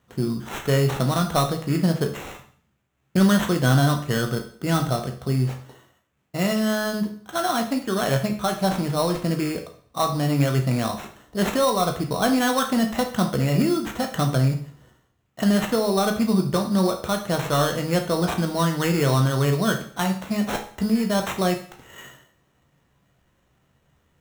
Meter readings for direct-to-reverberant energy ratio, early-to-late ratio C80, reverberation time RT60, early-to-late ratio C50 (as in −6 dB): 3.5 dB, 14.0 dB, 0.50 s, 9.5 dB